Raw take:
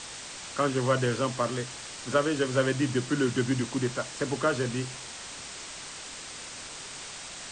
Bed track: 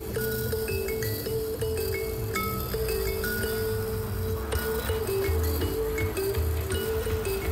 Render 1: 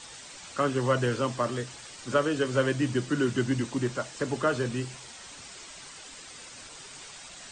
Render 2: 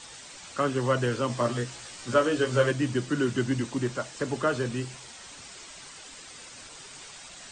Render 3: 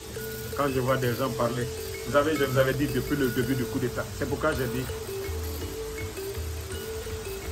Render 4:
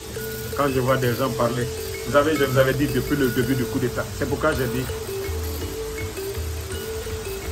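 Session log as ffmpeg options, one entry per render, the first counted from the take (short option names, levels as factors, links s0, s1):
-af "afftdn=nr=8:nf=-42"
-filter_complex "[0:a]asettb=1/sr,asplit=3[s0][s1][s2];[s0]atrim=end=1.284[s3];[s1]atrim=start=1.28:end=2.71,asetpts=PTS-STARTPTS,afade=t=in:d=0.004:c=qsin,afade=t=out:st=1.426:d=0.004:c=qsin,asplit=2[s4][s5];[s5]adelay=17,volume=0.75[s6];[s4][s6]amix=inputs=2:normalize=0,atrim=end_sample=63063[s7];[s2]atrim=start=2.706[s8];[s3][s7]acrossfade=d=0.004:c1=hsin:c2=qsin[s9];[s9][s8]acrossfade=d=0.004:c1=qsin:c2=hsin"
-filter_complex "[1:a]volume=0.473[s0];[0:a][s0]amix=inputs=2:normalize=0"
-af "volume=1.78"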